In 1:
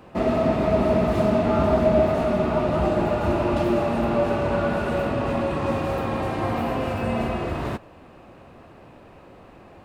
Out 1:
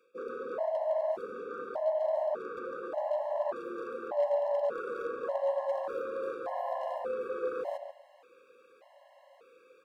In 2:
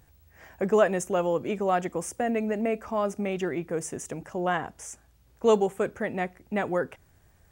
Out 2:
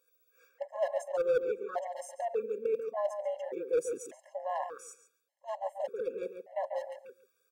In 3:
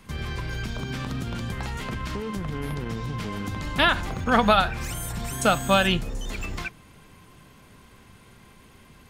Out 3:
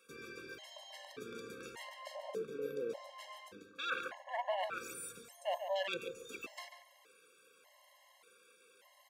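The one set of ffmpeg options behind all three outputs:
-filter_complex "[0:a]afwtdn=0.0501,tiltshelf=f=970:g=-7.5,areverse,acompressor=threshold=-39dB:ratio=8,areverse,highpass=f=500:t=q:w=4.9,aeval=exprs='0.0473*(cos(1*acos(clip(val(0)/0.0473,-1,1)))-cos(1*PI/2))+0.00237*(cos(3*acos(clip(val(0)/0.0473,-1,1)))-cos(3*PI/2))':c=same,asplit=2[a][b];[b]asoftclip=type=tanh:threshold=-37.5dB,volume=-10dB[c];[a][c]amix=inputs=2:normalize=0,asplit=2[d][e];[e]adelay=140,lowpass=f=3k:p=1,volume=-7dB,asplit=2[f][g];[g]adelay=140,lowpass=f=3k:p=1,volume=0.2,asplit=2[h][i];[i]adelay=140,lowpass=f=3k:p=1,volume=0.2[j];[d][f][h][j]amix=inputs=4:normalize=0,afftfilt=real='re*gt(sin(2*PI*0.85*pts/sr)*(1-2*mod(floor(b*sr/1024/550),2)),0)':imag='im*gt(sin(2*PI*0.85*pts/sr)*(1-2*mod(floor(b*sr/1024/550),2)),0)':win_size=1024:overlap=0.75,volume=3dB"

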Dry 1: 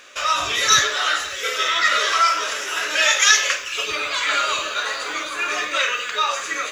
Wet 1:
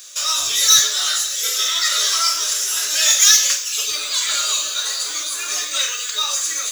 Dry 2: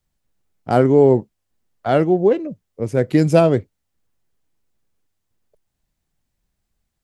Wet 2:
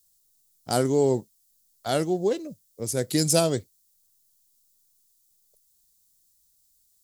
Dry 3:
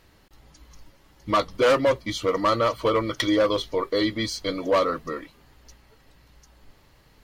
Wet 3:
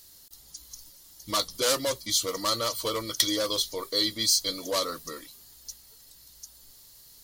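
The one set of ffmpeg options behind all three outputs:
-af "highshelf=f=3.7k:g=11,aexciter=amount=3.2:drive=8.7:freq=3.6k,volume=-9.5dB"

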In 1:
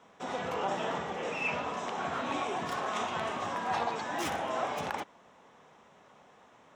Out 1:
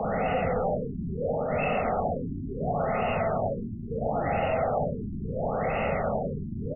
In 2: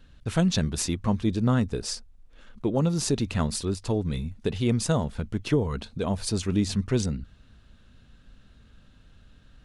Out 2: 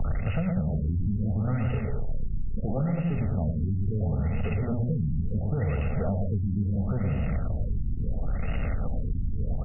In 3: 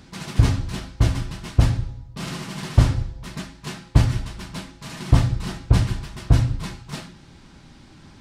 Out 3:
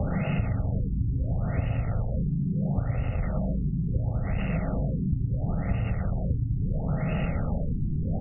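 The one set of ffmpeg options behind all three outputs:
-filter_complex "[0:a]aeval=exprs='val(0)+0.5*0.106*sgn(val(0))':c=same,equalizer=f=1.1k:t=o:w=0.69:g=-3.5,aecho=1:1:113.7|207:0.562|0.355,acrossover=split=180|610[a][b][c];[a]acompressor=threshold=-21dB:ratio=4[d];[b]acompressor=threshold=-25dB:ratio=4[e];[c]acompressor=threshold=-39dB:ratio=4[f];[d][e][f]amix=inputs=3:normalize=0,bandreject=f=60:t=h:w=6,bandreject=f=120:t=h:w=6,bandreject=f=180:t=h:w=6,bandreject=f=240:t=h:w=6,bandreject=f=300:t=h:w=6,bandreject=f=360:t=h:w=6,bandreject=f=420:t=h:w=6,bandreject=f=480:t=h:w=6,bandreject=f=540:t=h:w=6,aecho=1:1:1.5:0.75,acompressor=threshold=-25dB:ratio=6,tiltshelf=f=1.5k:g=-4.5,bandreject=f=1.5k:w=26,afftfilt=real='re*lt(b*sr/1024,370*pow(3000/370,0.5+0.5*sin(2*PI*0.73*pts/sr)))':imag='im*lt(b*sr/1024,370*pow(3000/370,0.5+0.5*sin(2*PI*0.73*pts/sr)))':win_size=1024:overlap=0.75,volume=6dB"

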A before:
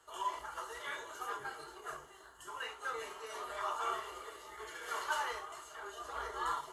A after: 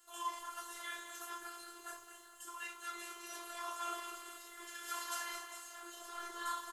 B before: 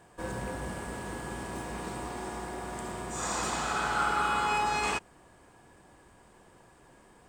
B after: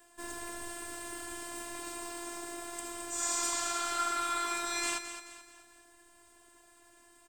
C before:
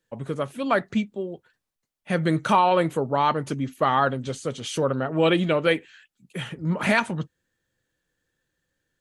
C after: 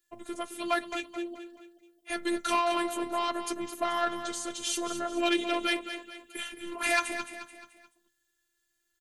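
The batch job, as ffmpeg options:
-af "highshelf=f=5.5k:g=-4.5,asoftclip=type=tanh:threshold=-11.5dB,aecho=1:1:216|432|648|864:0.316|0.133|0.0558|0.0234,afftfilt=real='hypot(re,im)*cos(PI*b)':imag='0':win_size=512:overlap=0.75,crystalizer=i=5:c=0,volume=-4dB"

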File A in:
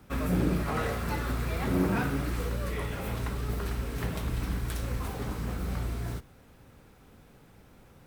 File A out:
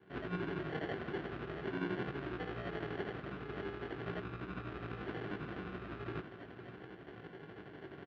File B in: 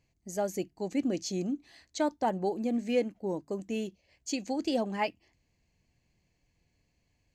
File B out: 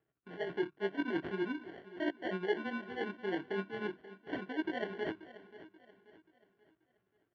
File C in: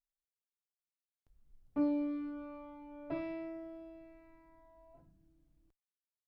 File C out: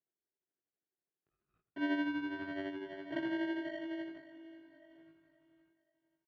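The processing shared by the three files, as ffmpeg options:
-filter_complex "[0:a]agate=range=-12dB:threshold=-57dB:ratio=16:detection=peak,equalizer=f=260:t=o:w=0.21:g=-6,areverse,acompressor=threshold=-42dB:ratio=10,areverse,tremolo=f=12:d=0.6,flanger=delay=16:depth=4.9:speed=0.44,acrusher=samples=35:mix=1:aa=0.000001,highpass=190,equalizer=f=220:t=q:w=4:g=-6,equalizer=f=370:t=q:w=4:g=6,equalizer=f=530:t=q:w=4:g=-7,equalizer=f=890:t=q:w=4:g=-7,equalizer=f=1.5k:t=q:w=4:g=5,equalizer=f=2.2k:t=q:w=4:g=-3,lowpass=f=3k:w=0.5412,lowpass=f=3k:w=1.3066,asplit=2[a][b];[b]aecho=0:1:533|1066|1599|2132:0.158|0.0634|0.0254|0.0101[c];[a][c]amix=inputs=2:normalize=0,volume=15dB"

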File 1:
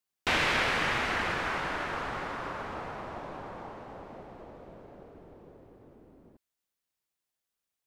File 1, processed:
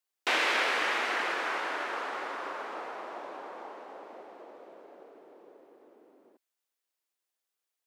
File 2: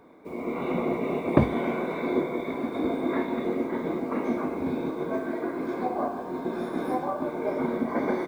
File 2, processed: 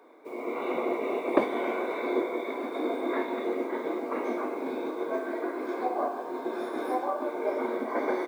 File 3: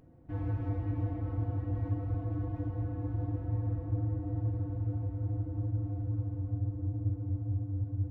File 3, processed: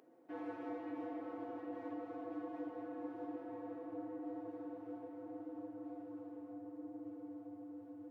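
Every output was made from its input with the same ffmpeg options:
-af "highpass=f=320:w=0.5412,highpass=f=320:w=1.3066"

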